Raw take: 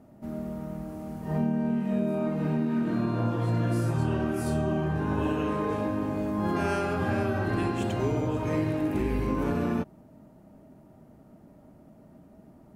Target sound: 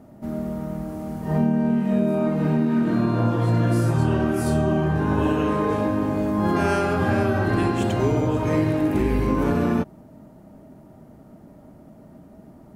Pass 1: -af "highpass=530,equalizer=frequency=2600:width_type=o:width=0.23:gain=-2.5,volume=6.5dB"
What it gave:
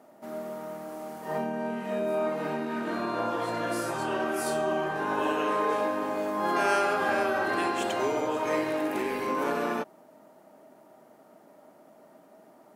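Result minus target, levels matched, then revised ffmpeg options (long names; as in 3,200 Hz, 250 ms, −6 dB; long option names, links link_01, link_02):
500 Hz band +3.0 dB
-af "equalizer=frequency=2600:width_type=o:width=0.23:gain=-2.5,volume=6.5dB"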